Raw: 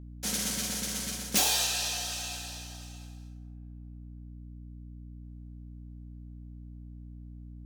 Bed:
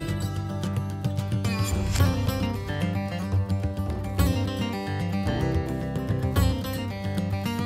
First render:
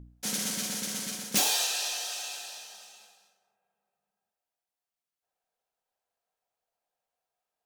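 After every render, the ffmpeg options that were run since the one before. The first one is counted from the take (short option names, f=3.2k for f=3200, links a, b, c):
-af "bandreject=f=60:t=h:w=4,bandreject=f=120:t=h:w=4,bandreject=f=180:t=h:w=4,bandreject=f=240:t=h:w=4,bandreject=f=300:t=h:w=4,bandreject=f=360:t=h:w=4,bandreject=f=420:t=h:w=4,bandreject=f=480:t=h:w=4,bandreject=f=540:t=h:w=4,bandreject=f=600:t=h:w=4,bandreject=f=660:t=h:w=4,bandreject=f=720:t=h:w=4"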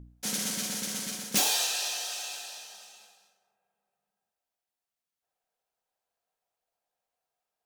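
-filter_complex "[0:a]asettb=1/sr,asplit=3[a][b][c];[a]atrim=end=0.764[d];[b]atrim=start=0.76:end=2.43,asetpts=PTS-STARTPTS,afade=t=in:d=0.004:c=qsin,afade=t=out:st=1.666:d=0.004:c=qsin,acrusher=bits=5:mode=log:mix=0:aa=0.000001[e];[c]atrim=start=2.426[f];[d][e]acrossfade=d=0.004:c1=hsin:c2=qsin[g];[g][f]acrossfade=d=0.004:c1=qsin:c2=hsin"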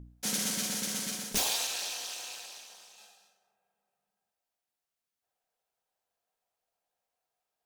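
-filter_complex "[0:a]asettb=1/sr,asplit=3[a][b][c];[a]atrim=end=1.324[d];[b]atrim=start=1.32:end=2.98,asetpts=PTS-STARTPTS,afade=t=in:d=0.004:c=qsin,afade=t=out:st=1.656:d=0.004:c=qsin,tremolo=f=230:d=0.974[e];[c]atrim=start=2.976[f];[d][e]acrossfade=d=0.004:c1=hsin:c2=qsin[g];[g][f]acrossfade=d=0.004:c1=qsin:c2=hsin"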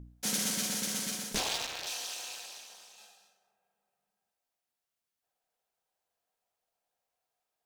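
-filter_complex "[0:a]asettb=1/sr,asplit=3[a][b][c];[a]atrim=end=1.354[d];[b]atrim=start=1.35:end=1.87,asetpts=PTS-STARTPTS,afade=t=in:d=0.004:c=qsin,afade=t=out:st=0.516:d=0.004:c=qsin,adynamicsmooth=sensitivity=7.5:basefreq=710[e];[c]atrim=start=1.866[f];[d][e]acrossfade=d=0.004:c1=hsin:c2=qsin[g];[g][f]acrossfade=d=0.004:c1=qsin:c2=hsin"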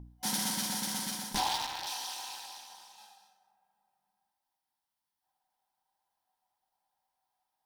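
-af "superequalizer=7b=0.355:8b=0.631:9b=3.16:12b=0.631:15b=0.562"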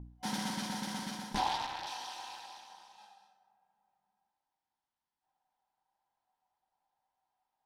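-af "aemphasis=mode=reproduction:type=75fm"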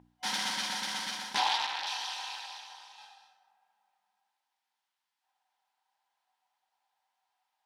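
-af "highpass=f=660:p=1,equalizer=f=2.8k:t=o:w=3:g=10"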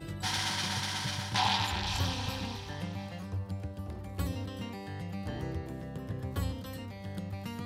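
-filter_complex "[1:a]volume=-11.5dB[a];[0:a][a]amix=inputs=2:normalize=0"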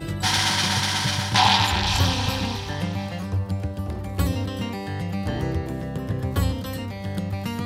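-af "volume=11dB"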